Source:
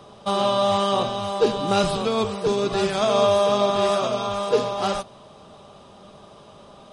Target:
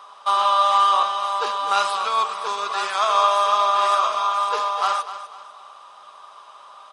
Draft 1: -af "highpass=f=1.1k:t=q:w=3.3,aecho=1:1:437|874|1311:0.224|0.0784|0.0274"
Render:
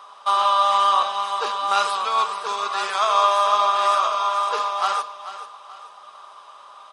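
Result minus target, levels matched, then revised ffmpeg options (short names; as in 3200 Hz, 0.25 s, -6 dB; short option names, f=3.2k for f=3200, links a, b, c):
echo 0.188 s late
-af "highpass=f=1.1k:t=q:w=3.3,aecho=1:1:249|498|747:0.224|0.0784|0.0274"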